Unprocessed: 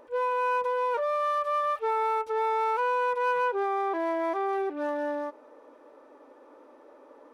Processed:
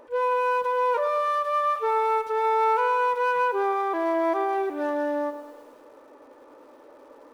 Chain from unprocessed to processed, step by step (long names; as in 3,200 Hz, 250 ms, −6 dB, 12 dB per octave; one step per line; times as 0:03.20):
feedback echo at a low word length 106 ms, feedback 55%, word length 9 bits, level −12.5 dB
level +3 dB